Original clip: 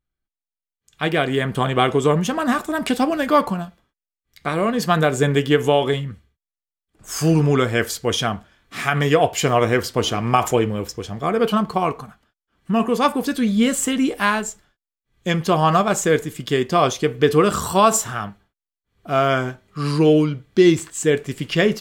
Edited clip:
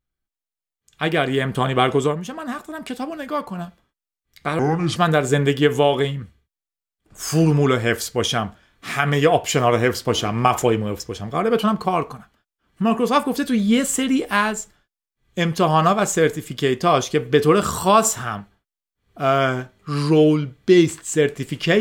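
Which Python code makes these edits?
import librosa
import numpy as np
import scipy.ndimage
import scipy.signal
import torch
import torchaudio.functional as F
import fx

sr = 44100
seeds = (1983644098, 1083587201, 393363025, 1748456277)

y = fx.edit(x, sr, fx.fade_down_up(start_s=2.02, length_s=1.62, db=-9.0, fade_s=0.13),
    fx.speed_span(start_s=4.59, length_s=0.26, speed=0.7), tone=tone)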